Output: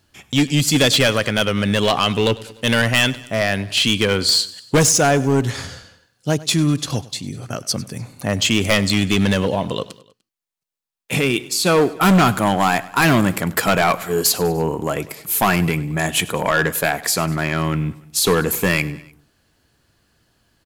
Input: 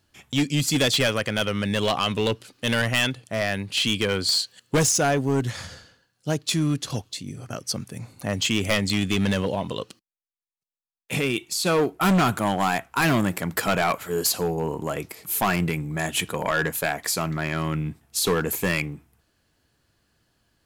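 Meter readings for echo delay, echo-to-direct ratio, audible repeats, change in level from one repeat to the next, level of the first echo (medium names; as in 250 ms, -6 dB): 99 ms, -18.0 dB, 3, -5.0 dB, -19.5 dB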